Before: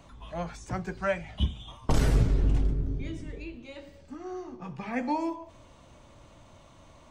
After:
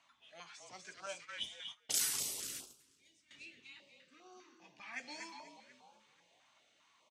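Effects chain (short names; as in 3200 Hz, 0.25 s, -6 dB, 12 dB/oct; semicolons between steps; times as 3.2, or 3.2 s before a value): frequency-shifting echo 0.243 s, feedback 52%, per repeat -39 Hz, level -6.5 dB; low-pass opened by the level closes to 2100 Hz, open at -18.5 dBFS; HPF 220 Hz 6 dB/oct; differentiator; 1.06–3.31 gate -54 dBFS, range -16 dB; high shelf 4400 Hz +7.5 dB; stepped notch 5 Hz 460–1900 Hz; gain +4 dB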